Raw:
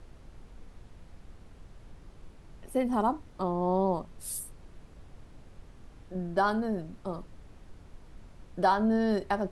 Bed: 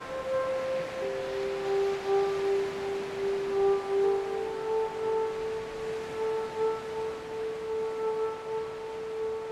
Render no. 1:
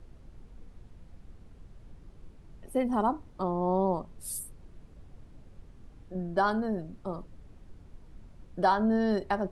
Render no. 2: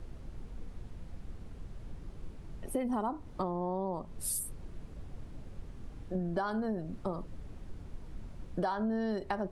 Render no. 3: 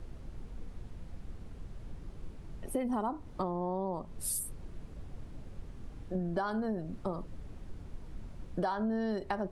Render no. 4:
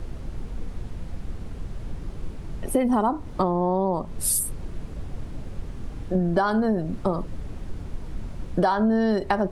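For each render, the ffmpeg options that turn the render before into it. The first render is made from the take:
ffmpeg -i in.wav -af "afftdn=noise_reduction=6:noise_floor=-53" out.wav
ffmpeg -i in.wav -filter_complex "[0:a]asplit=2[link_01][link_02];[link_02]alimiter=limit=-23.5dB:level=0:latency=1,volume=-1dB[link_03];[link_01][link_03]amix=inputs=2:normalize=0,acompressor=threshold=-31dB:ratio=5" out.wav
ffmpeg -i in.wav -af anull out.wav
ffmpeg -i in.wav -af "volume=11.5dB" out.wav

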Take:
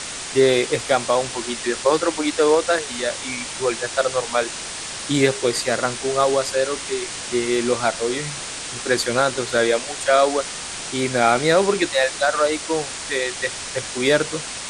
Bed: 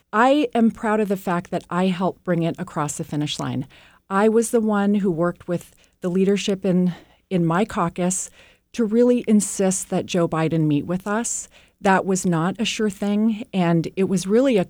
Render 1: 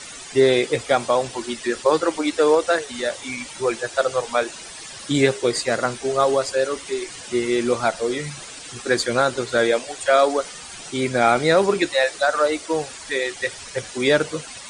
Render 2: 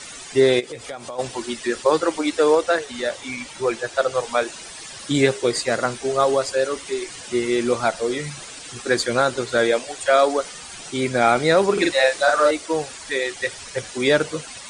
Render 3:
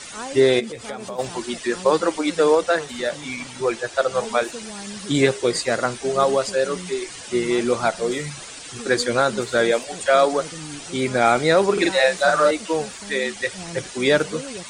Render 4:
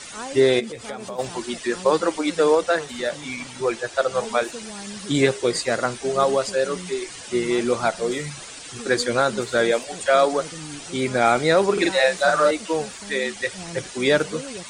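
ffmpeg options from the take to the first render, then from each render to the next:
ffmpeg -i in.wav -af "afftdn=noise_reduction=12:noise_floor=-31" out.wav
ffmpeg -i in.wav -filter_complex "[0:a]asplit=3[link_01][link_02][link_03];[link_01]afade=type=out:start_time=0.59:duration=0.02[link_04];[link_02]acompressor=threshold=-30dB:ratio=6:attack=3.2:release=140:knee=1:detection=peak,afade=type=in:start_time=0.59:duration=0.02,afade=type=out:start_time=1.18:duration=0.02[link_05];[link_03]afade=type=in:start_time=1.18:duration=0.02[link_06];[link_04][link_05][link_06]amix=inputs=3:normalize=0,asettb=1/sr,asplit=3[link_07][link_08][link_09];[link_07]atrim=end=2.614[link_10];[link_08]atrim=start=2.61:end=4.15,asetpts=PTS-STARTPTS,afade=type=in:duration=0.004:curve=qsin,afade=type=out:start_time=1.536:duration=0.004:curve=qsin,highshelf=frequency=7700:gain=-6.5[link_11];[link_09]atrim=start=4.146[link_12];[link_10][link_11]acrossfade=duration=0.004:curve1=hsin:curve2=qsin[link_13];[link_13][link_12]acrossfade=duration=0.004:curve1=qsin:curve2=hsin,asettb=1/sr,asplit=3[link_14][link_15][link_16];[link_14]atrim=end=11.734[link_17];[link_15]atrim=start=11.73:end=12.51,asetpts=PTS-STARTPTS,afade=type=in:duration=0.004:curve=qsin,afade=type=out:start_time=0.776:duration=0.004:curve=qsin,asplit=2[link_18][link_19];[link_19]adelay=44,volume=-2dB[link_20];[link_18][link_20]amix=inputs=2:normalize=0,atrim=end_sample=34398[link_21];[link_16]atrim=start=12.506[link_22];[link_17][link_21]acrossfade=duration=0.004:curve1=hsin:curve2=qsin[link_23];[link_23][link_22]acrossfade=duration=0.004:curve1=qsin:curve2=hsin" out.wav
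ffmpeg -i in.wav -i bed.wav -filter_complex "[1:a]volume=-17.5dB[link_01];[0:a][link_01]amix=inputs=2:normalize=0" out.wav
ffmpeg -i in.wav -af "volume=-1dB" out.wav

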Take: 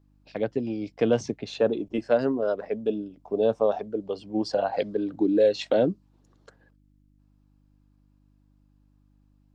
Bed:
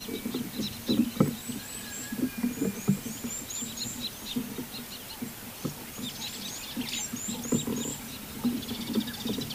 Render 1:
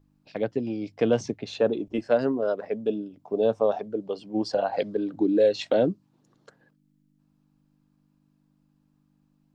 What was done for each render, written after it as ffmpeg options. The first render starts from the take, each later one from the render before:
ffmpeg -i in.wav -af "bandreject=frequency=50:width_type=h:width=4,bandreject=frequency=100:width_type=h:width=4" out.wav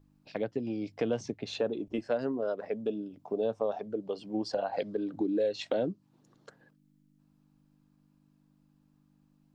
ffmpeg -i in.wav -af "acompressor=threshold=-33dB:ratio=2" out.wav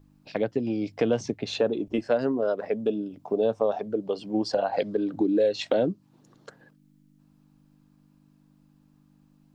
ffmpeg -i in.wav -af "volume=6.5dB" out.wav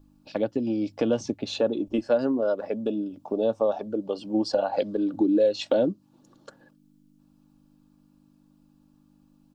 ffmpeg -i in.wav -af "equalizer=frequency=2000:width_type=o:width=0.49:gain=-8.5,aecho=1:1:3.5:0.38" out.wav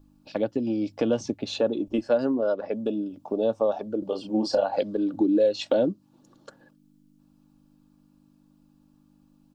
ffmpeg -i in.wav -filter_complex "[0:a]asettb=1/sr,asplit=3[link_01][link_02][link_03];[link_01]atrim=end=2.344[link_04];[link_02]atrim=start=2.34:end=2.74,asetpts=PTS-STARTPTS,afade=type=in:duration=0.004:curve=qsin,afade=type=out:start_time=0.396:duration=0.004:curve=qsin,lowpass=frequency=6100:width=0.5412,lowpass=frequency=6100:width=1.3066[link_05];[link_03]atrim=start=2.736[link_06];[link_04][link_05]acrossfade=duration=0.004:curve1=hsin:curve2=qsin[link_07];[link_07][link_06]acrossfade=duration=0.004:curve1=qsin:curve2=hsin,asettb=1/sr,asplit=3[link_08][link_09][link_10];[link_08]atrim=end=3.994[link_11];[link_09]atrim=start=3.99:end=4.66,asetpts=PTS-STARTPTS,afade=type=in:duration=0.004:curve=qsin,afade=type=out:start_time=0.666:duration=0.004:curve=qsin,asplit=2[link_12][link_13];[link_13]adelay=32,volume=-5dB[link_14];[link_12][link_14]amix=inputs=2:normalize=0,atrim=end_sample=29547[link_15];[link_10]atrim=start=4.656[link_16];[link_11][link_15]acrossfade=duration=0.004:curve1=hsin:curve2=qsin[link_17];[link_17][link_16]acrossfade=duration=0.004:curve1=qsin:curve2=hsin" out.wav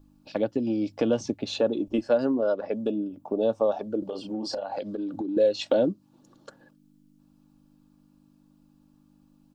ffmpeg -i in.wav -filter_complex "[0:a]asettb=1/sr,asplit=3[link_01][link_02][link_03];[link_01]atrim=end=2.914[link_04];[link_02]atrim=start=2.91:end=3.41,asetpts=PTS-STARTPTS,afade=type=in:duration=0.004:curve=qsin,afade=type=out:start_time=0.496:duration=0.004:curve=qsin,equalizer=frequency=4800:width_type=o:width=1.8:gain=-8[link_05];[link_03]atrim=start=3.406[link_06];[link_04][link_05]acrossfade=duration=0.004:curve1=hsin:curve2=qsin[link_07];[link_07][link_06]acrossfade=duration=0.004:curve1=qsin:curve2=hsin,asettb=1/sr,asplit=3[link_08][link_09][link_10];[link_08]atrim=end=4.004[link_11];[link_09]atrim=start=4:end=5.37,asetpts=PTS-STARTPTS,afade=type=in:duration=0.004:curve=qsin,afade=type=out:start_time=1.366:duration=0.004:curve=qsin,acompressor=threshold=-28dB:ratio=6:attack=3.2:release=140:knee=1:detection=peak[link_12];[link_10]atrim=start=5.366[link_13];[link_11][link_12]acrossfade=duration=0.004:curve1=hsin:curve2=qsin[link_14];[link_14][link_13]acrossfade=duration=0.004:curve1=qsin:curve2=hsin" out.wav

